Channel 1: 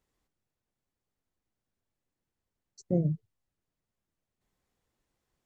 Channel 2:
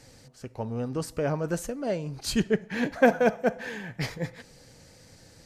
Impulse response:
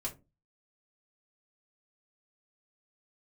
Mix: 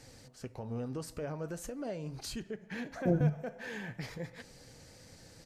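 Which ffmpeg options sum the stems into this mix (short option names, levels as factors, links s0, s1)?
-filter_complex "[0:a]adelay=150,volume=1.41,asplit=2[s0][s1];[s1]volume=0.335[s2];[1:a]acompressor=threshold=0.0178:ratio=2,alimiter=level_in=1.78:limit=0.0631:level=0:latency=1:release=108,volume=0.562,volume=1.33,asplit=2[s3][s4];[s4]apad=whole_len=247311[s5];[s0][s5]sidechaingate=range=0.0224:threshold=0.0112:ratio=16:detection=peak[s6];[2:a]atrim=start_sample=2205[s7];[s2][s7]afir=irnorm=-1:irlink=0[s8];[s6][s3][s8]amix=inputs=3:normalize=0,flanger=delay=2.6:depth=6.5:regen=-82:speed=0.42:shape=sinusoidal"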